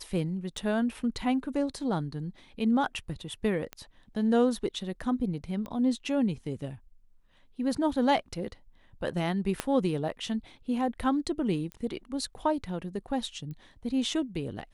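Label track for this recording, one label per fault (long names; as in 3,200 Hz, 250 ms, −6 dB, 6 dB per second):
0.570000	0.570000	drop-out 4.8 ms
3.730000	3.730000	click −22 dBFS
5.660000	5.660000	click −26 dBFS
9.600000	9.600000	click −13 dBFS
11.720000	11.720000	click −26 dBFS
13.510000	13.510000	click −31 dBFS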